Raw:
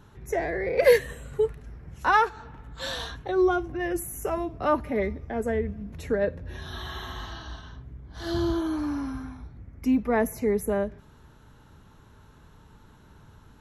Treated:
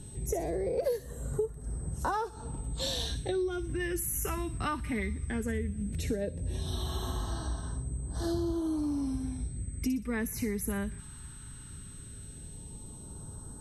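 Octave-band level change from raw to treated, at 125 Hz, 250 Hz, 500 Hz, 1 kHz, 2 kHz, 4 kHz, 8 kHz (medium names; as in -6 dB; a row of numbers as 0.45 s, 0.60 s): +2.5 dB, -4.5 dB, -9.5 dB, -10.0 dB, -10.0 dB, -1.0 dB, +4.5 dB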